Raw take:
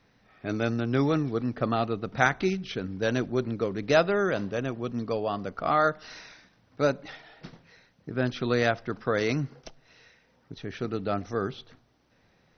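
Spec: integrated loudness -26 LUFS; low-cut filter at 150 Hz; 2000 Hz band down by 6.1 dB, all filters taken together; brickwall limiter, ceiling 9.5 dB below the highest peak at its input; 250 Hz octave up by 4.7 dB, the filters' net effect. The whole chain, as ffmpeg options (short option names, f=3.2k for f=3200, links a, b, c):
-af "highpass=150,equalizer=f=250:t=o:g=6.5,equalizer=f=2k:t=o:g=-9,volume=3.5dB,alimiter=limit=-14.5dB:level=0:latency=1"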